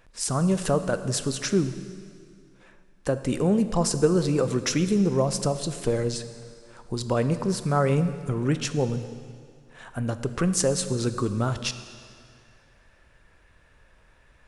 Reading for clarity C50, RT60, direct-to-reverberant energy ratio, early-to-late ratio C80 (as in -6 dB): 11.5 dB, 2.2 s, 10.0 dB, 12.0 dB